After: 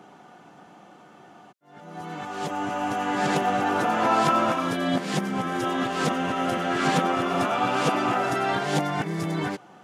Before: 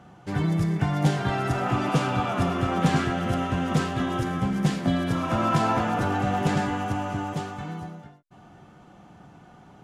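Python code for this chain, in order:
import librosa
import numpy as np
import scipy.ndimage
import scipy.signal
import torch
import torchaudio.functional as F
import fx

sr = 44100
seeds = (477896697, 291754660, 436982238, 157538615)

y = x[::-1].copy()
y = scipy.signal.sosfilt(scipy.signal.butter(2, 280.0, 'highpass', fs=sr, output='sos'), y)
y = y * 10.0 ** (3.5 / 20.0)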